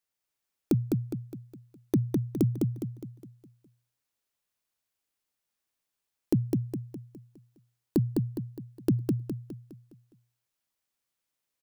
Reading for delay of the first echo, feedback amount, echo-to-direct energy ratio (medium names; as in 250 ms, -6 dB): 206 ms, 44%, -2.0 dB